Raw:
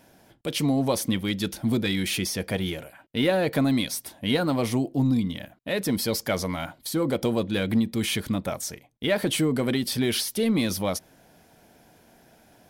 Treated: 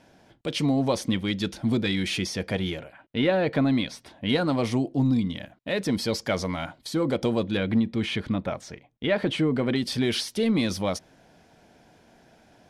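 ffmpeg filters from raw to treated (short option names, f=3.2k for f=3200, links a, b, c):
-af "asetnsamples=n=441:p=0,asendcmd='2.79 lowpass f 3600;4.29 lowpass f 6400;7.57 lowpass f 3300;9.76 lowpass f 6500',lowpass=6.1k"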